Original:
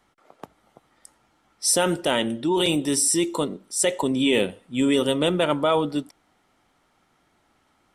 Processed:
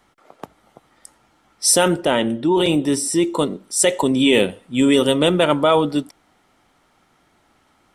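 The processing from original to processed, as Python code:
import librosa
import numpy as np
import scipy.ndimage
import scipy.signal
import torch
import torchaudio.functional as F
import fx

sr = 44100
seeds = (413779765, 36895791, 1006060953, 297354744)

y = fx.high_shelf(x, sr, hz=3000.0, db=-9.5, at=(1.88, 3.39))
y = y * librosa.db_to_amplitude(5.5)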